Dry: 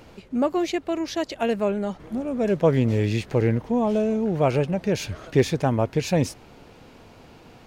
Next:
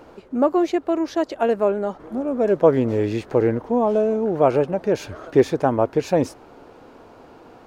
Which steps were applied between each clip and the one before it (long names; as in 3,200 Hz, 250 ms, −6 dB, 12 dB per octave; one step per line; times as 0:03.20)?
flat-topped bell 640 Hz +10 dB 2.9 octaves
level −5 dB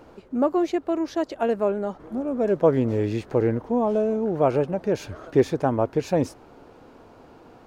bass and treble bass +4 dB, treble +1 dB
level −4 dB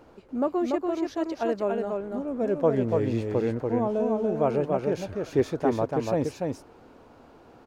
single-tap delay 288 ms −3.5 dB
level −4.5 dB